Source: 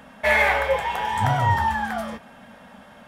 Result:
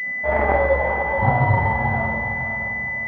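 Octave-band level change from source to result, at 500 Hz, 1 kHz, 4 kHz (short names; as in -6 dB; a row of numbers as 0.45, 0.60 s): +4.5 dB, +1.0 dB, under -15 dB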